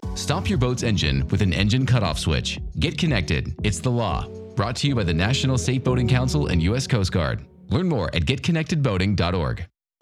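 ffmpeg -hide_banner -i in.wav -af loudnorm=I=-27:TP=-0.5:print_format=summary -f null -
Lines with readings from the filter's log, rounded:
Input Integrated:    -22.7 LUFS
Input True Peak:      -2.7 dBTP
Input LRA:             1.7 LU
Input Threshold:     -32.8 LUFS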